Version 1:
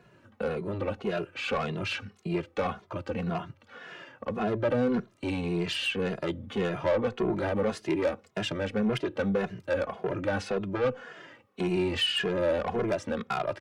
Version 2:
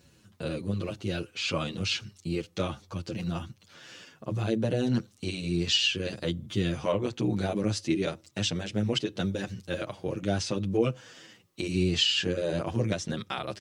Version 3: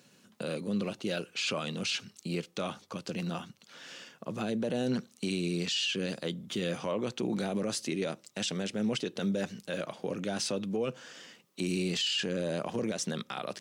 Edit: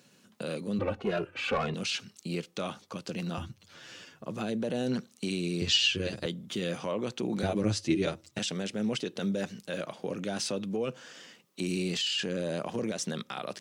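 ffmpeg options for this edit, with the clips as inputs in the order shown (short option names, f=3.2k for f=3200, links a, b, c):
-filter_complex "[1:a]asplit=3[a][b][c];[2:a]asplit=5[d][e][f][g][h];[d]atrim=end=0.792[i];[0:a]atrim=start=0.788:end=1.742[j];[e]atrim=start=1.738:end=3.382[k];[a]atrim=start=3.378:end=4.262[l];[f]atrim=start=4.258:end=5.622[m];[b]atrim=start=5.618:end=6.262[n];[g]atrim=start=6.258:end=7.432[o];[c]atrim=start=7.428:end=8.392[p];[h]atrim=start=8.388[q];[i][j]acrossfade=d=0.004:c1=hsin:c2=hsin[r];[r][k]acrossfade=d=0.004:c1=hsin:c2=hsin[s];[s][l]acrossfade=d=0.004:c1=hsin:c2=hsin[t];[t][m]acrossfade=d=0.004:c1=hsin:c2=hsin[u];[u][n]acrossfade=d=0.004:c1=hsin:c2=hsin[v];[v][o]acrossfade=d=0.004:c1=hsin:c2=hsin[w];[w][p]acrossfade=d=0.004:c1=hsin:c2=hsin[x];[x][q]acrossfade=d=0.004:c1=hsin:c2=hsin"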